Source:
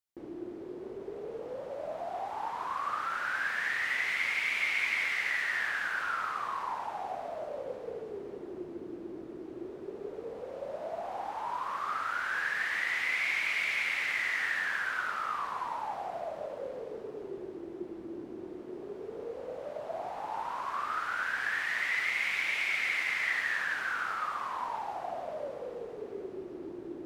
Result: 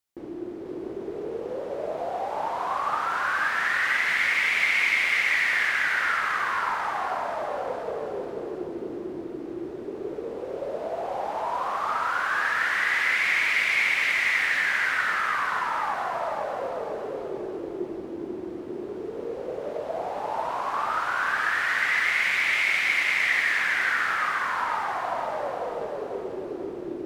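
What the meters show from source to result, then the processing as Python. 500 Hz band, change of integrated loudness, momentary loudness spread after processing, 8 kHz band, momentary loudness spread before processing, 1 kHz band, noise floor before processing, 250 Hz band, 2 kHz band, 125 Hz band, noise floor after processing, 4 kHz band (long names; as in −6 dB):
+8.0 dB, +8.0 dB, 14 LU, +8.0 dB, 14 LU, +8.0 dB, −45 dBFS, +7.5 dB, +8.0 dB, +7.5 dB, −37 dBFS, +8.0 dB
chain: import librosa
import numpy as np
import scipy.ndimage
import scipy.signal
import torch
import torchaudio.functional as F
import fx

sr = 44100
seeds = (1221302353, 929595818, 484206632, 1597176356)

y = fx.echo_feedback(x, sr, ms=491, feedback_pct=40, wet_db=-3.5)
y = y * librosa.db_to_amplitude(6.0)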